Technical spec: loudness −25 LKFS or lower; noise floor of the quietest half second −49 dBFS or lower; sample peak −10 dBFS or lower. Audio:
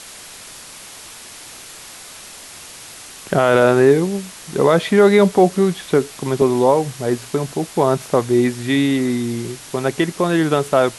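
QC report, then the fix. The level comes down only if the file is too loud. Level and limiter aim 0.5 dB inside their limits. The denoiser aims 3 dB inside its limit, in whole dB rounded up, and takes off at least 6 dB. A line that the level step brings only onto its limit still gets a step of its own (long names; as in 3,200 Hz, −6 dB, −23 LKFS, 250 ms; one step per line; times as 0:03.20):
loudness −17.0 LKFS: out of spec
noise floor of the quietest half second −38 dBFS: out of spec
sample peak −2.0 dBFS: out of spec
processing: broadband denoise 6 dB, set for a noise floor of −38 dBFS
level −8.5 dB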